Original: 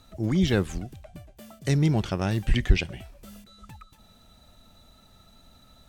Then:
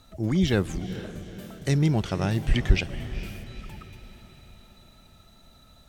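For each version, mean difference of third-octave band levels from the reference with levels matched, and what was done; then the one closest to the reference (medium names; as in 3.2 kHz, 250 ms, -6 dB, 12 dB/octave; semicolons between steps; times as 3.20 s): 4.5 dB: echo that smears into a reverb 462 ms, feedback 48%, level -12.5 dB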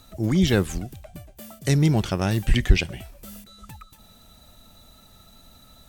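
1.5 dB: treble shelf 9 kHz +11.5 dB; trim +3 dB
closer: second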